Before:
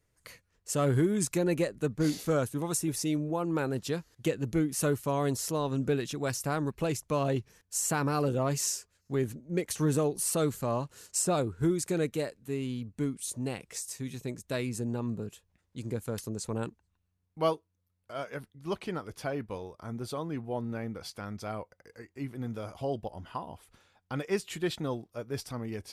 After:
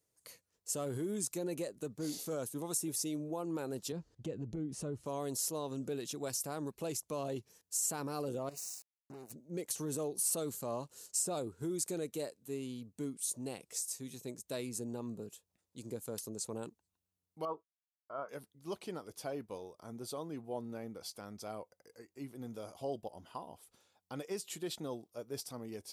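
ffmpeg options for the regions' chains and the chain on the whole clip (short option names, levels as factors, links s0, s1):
-filter_complex "[0:a]asettb=1/sr,asplit=3[s0][s1][s2];[s0]atrim=end=3.924[s3];[s1]atrim=start=3.92:end=5.06,asetpts=PTS-STARTPTS,afade=t=in:d=0.004:c=qsin,afade=t=out:st=1.136:d=0.004:c=qsin,lowpass=f=11000:w=0.5412,lowpass=f=11000:w=1.3066,aemphasis=mode=reproduction:type=riaa,acompressor=threshold=0.0355:ratio=2.5:attack=3.2:release=140:knee=1:detection=peak[s4];[s2]atrim=start=5.056[s5];[s3][s4]acrossfade=d=0.004:c1=hsin:c2=qsin[s6];[s6][s5]acrossfade=d=0.004:c1=qsin:c2=hsin,asettb=1/sr,asplit=3[s7][s8][s9];[s7]atrim=end=8.494[s10];[s8]atrim=start=8.49:end=9.32,asetpts=PTS-STARTPTS,afade=t=in:d=0.004:c=qsin,afade=t=out:st=0.826:d=0.004:c=qsin,acompressor=threshold=0.0112:ratio=16:attack=3.2:release=140:knee=1:detection=peak,acrusher=bits=6:mix=0:aa=0.5,asuperstop=centerf=3300:order=4:qfactor=4.2[s11];[s9]atrim=start=9.316[s12];[s10][s11]acrossfade=d=0.004:c1=hsin:c2=qsin[s13];[s13][s12]acrossfade=d=0.004:c1=qsin:c2=hsin,asettb=1/sr,asplit=3[s14][s15][s16];[s14]atrim=end=17.454[s17];[s15]atrim=start=17.45:end=18.29,asetpts=PTS-STARTPTS,afade=t=in:d=0.004:c=qsin,afade=t=out:st=0.836:d=0.004:c=qsin,agate=range=0.0224:threshold=0.00316:ratio=3:release=100:detection=peak,lowpass=f=1200:t=q:w=4.5[s18];[s16]atrim=start=18.286[s19];[s17][s18]acrossfade=d=0.004:c1=hsin:c2=qsin[s20];[s20][s19]acrossfade=d=0.004:c1=qsin:c2=hsin,alimiter=limit=0.0708:level=0:latency=1:release=52,highpass=f=640:p=1,equalizer=f=1800:t=o:w=2.1:g=-13.5,volume=1.26"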